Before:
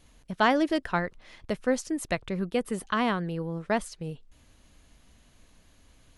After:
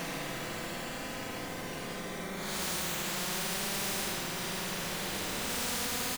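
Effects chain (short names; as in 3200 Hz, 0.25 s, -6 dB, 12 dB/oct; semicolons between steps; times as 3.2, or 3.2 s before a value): time blur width 89 ms; band-pass 220 Hz, Q 2.3; frequency-shifting echo 93 ms, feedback 48%, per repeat -48 Hz, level -17 dB; in parallel at -9 dB: bit-crush 5-bit; on the sum: Schroeder reverb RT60 2.4 s, combs from 33 ms, DRR 5.5 dB; limiter -30 dBFS, peak gain reduction 12 dB; Paulstretch 14×, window 0.05 s, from 2.15; spectral compressor 4:1; gain +4.5 dB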